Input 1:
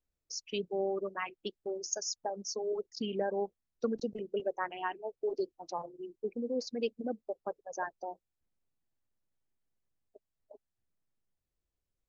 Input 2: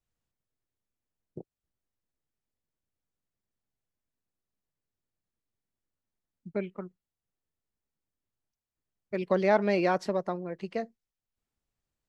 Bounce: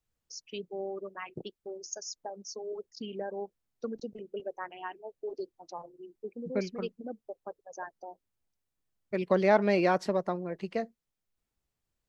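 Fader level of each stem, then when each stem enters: −4.0, +0.5 decibels; 0.00, 0.00 seconds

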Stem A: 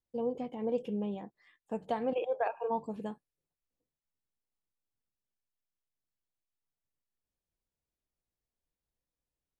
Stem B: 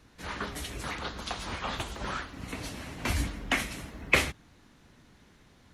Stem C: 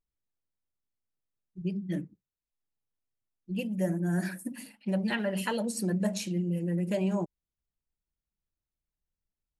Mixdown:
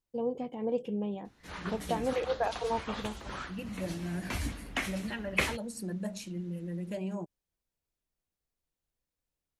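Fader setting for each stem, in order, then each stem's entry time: +1.0, −5.5, −7.5 decibels; 0.00, 1.25, 0.00 seconds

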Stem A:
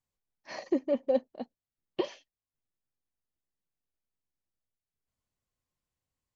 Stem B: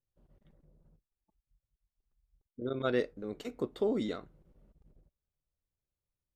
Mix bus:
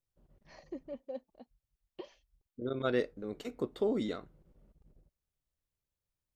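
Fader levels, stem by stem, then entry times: −15.0, −0.5 decibels; 0.00, 0.00 seconds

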